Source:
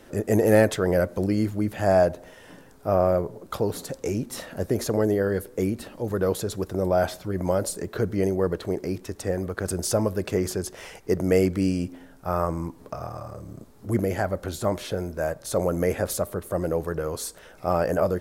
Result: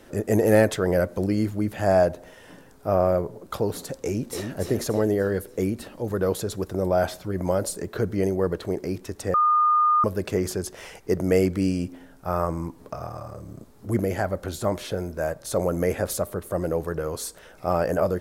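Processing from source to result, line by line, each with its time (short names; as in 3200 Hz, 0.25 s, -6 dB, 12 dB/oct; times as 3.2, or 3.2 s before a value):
3.94–4.5 echo throw 0.29 s, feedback 45%, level -5.5 dB
9.34–10.04 bleep 1220 Hz -16 dBFS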